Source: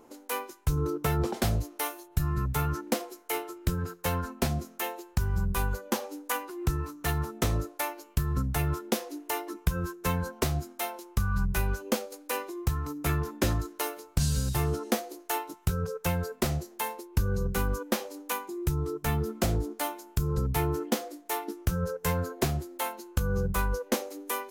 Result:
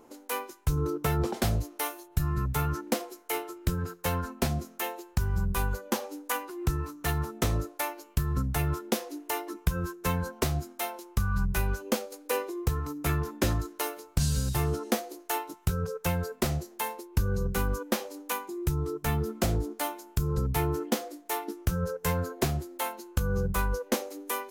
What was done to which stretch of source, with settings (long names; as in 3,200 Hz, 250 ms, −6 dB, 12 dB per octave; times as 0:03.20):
0:12.25–0:12.80: parametric band 450 Hz +9 dB 0.41 octaves